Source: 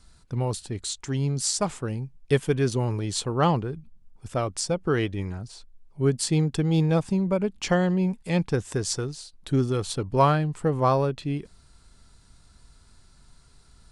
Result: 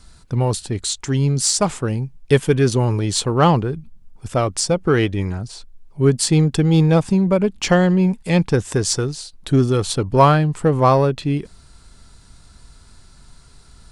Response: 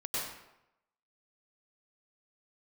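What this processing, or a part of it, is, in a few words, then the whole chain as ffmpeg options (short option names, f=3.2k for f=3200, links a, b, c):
parallel distortion: -filter_complex "[0:a]asplit=2[a][b];[b]asoftclip=type=hard:threshold=-23.5dB,volume=-12dB[c];[a][c]amix=inputs=2:normalize=0,volume=6.5dB"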